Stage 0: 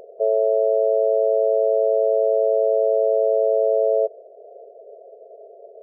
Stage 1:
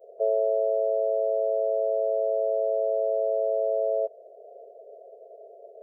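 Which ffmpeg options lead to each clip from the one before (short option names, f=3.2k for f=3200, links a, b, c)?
-af "lowshelf=f=460:g=-10.5,areverse,acompressor=mode=upward:threshold=-44dB:ratio=2.5,areverse,adynamicequalizer=threshold=0.0141:dfrequency=310:dqfactor=0.93:tfrequency=310:tqfactor=0.93:attack=5:release=100:ratio=0.375:range=3:mode=cutabove:tftype=bell"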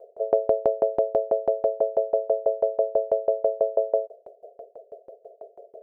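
-af "aeval=exprs='val(0)*pow(10,-27*if(lt(mod(6.1*n/s,1),2*abs(6.1)/1000),1-mod(6.1*n/s,1)/(2*abs(6.1)/1000),(mod(6.1*n/s,1)-2*abs(6.1)/1000)/(1-2*abs(6.1)/1000))/20)':c=same,volume=9dB"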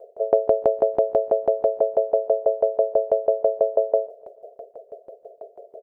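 -af "aecho=1:1:148|296|444|592:0.0708|0.0389|0.0214|0.0118,volume=3dB"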